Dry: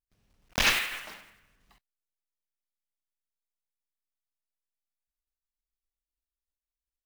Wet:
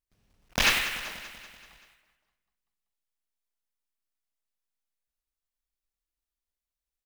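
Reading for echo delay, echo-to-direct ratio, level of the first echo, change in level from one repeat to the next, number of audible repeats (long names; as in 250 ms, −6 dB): 192 ms, −11.5 dB, −13.0 dB, −5.0 dB, 5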